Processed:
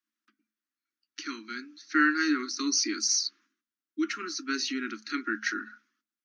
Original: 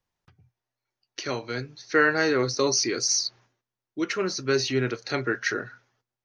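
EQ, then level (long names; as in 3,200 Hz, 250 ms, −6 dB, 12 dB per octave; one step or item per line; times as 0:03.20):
elliptic band-stop filter 320–1,300 Hz, stop band 80 dB
dynamic equaliser 5,200 Hz, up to +3 dB, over −32 dBFS, Q 0.8
Chebyshev high-pass with heavy ripple 210 Hz, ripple 9 dB
+4.0 dB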